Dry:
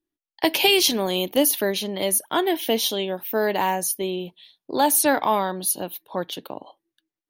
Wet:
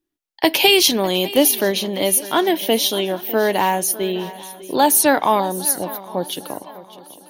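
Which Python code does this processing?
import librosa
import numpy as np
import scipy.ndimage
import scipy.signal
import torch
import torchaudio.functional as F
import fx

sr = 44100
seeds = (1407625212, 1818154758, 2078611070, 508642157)

y = fx.band_shelf(x, sr, hz=1900.0, db=-11.0, octaves=1.7, at=(5.4, 6.3))
y = fx.echo_swing(y, sr, ms=804, ratio=3, feedback_pct=37, wet_db=-17.5)
y = y * 10.0 ** (4.5 / 20.0)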